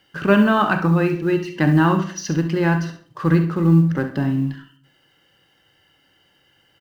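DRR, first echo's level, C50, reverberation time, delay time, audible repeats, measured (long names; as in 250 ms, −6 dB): 7.0 dB, −12.0 dB, 8.5 dB, 0.50 s, 67 ms, 1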